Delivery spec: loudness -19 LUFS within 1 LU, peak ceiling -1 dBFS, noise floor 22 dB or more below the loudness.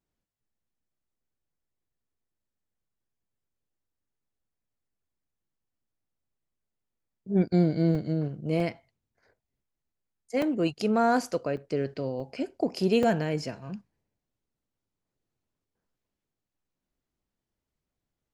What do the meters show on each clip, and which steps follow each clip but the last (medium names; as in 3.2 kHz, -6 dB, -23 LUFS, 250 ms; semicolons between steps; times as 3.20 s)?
dropouts 6; longest dropout 3.4 ms; loudness -27.5 LUFS; peak level -12.5 dBFS; loudness target -19.0 LUFS
-> interpolate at 7.95/8.60/10.42/11.57/12.20/13.03 s, 3.4 ms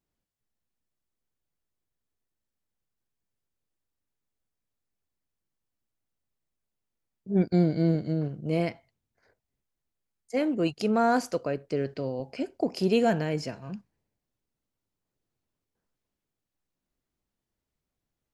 dropouts 0; loudness -27.5 LUFS; peak level -12.5 dBFS; loudness target -19.0 LUFS
-> trim +8.5 dB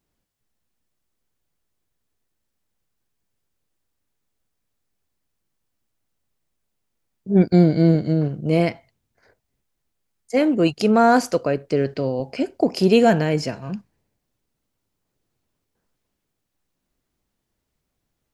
loudness -19.0 LUFS; peak level -4.0 dBFS; noise floor -78 dBFS